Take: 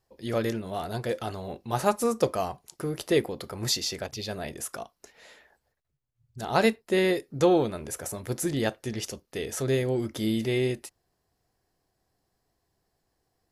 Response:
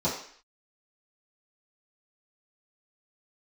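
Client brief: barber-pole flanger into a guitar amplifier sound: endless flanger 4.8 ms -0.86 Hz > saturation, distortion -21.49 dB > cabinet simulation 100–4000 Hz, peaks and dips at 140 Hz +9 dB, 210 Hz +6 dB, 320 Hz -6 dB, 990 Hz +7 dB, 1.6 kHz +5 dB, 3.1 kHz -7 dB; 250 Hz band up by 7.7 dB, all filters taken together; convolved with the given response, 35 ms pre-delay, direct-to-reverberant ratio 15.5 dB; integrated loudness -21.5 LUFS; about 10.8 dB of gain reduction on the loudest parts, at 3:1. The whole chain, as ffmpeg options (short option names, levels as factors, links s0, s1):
-filter_complex "[0:a]equalizer=f=250:t=o:g=7.5,acompressor=threshold=0.0355:ratio=3,asplit=2[s0][s1];[1:a]atrim=start_sample=2205,adelay=35[s2];[s1][s2]afir=irnorm=-1:irlink=0,volume=0.0501[s3];[s0][s3]amix=inputs=2:normalize=0,asplit=2[s4][s5];[s5]adelay=4.8,afreqshift=-0.86[s6];[s4][s6]amix=inputs=2:normalize=1,asoftclip=threshold=0.075,highpass=100,equalizer=f=140:t=q:w=4:g=9,equalizer=f=210:t=q:w=4:g=6,equalizer=f=320:t=q:w=4:g=-6,equalizer=f=990:t=q:w=4:g=7,equalizer=f=1600:t=q:w=4:g=5,equalizer=f=3100:t=q:w=4:g=-7,lowpass=f=4000:w=0.5412,lowpass=f=4000:w=1.3066,volume=5.01"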